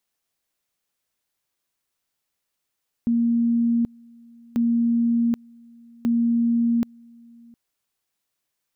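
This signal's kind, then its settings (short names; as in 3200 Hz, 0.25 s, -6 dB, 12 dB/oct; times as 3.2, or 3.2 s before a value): two-level tone 234 Hz -17 dBFS, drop 28 dB, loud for 0.78 s, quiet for 0.71 s, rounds 3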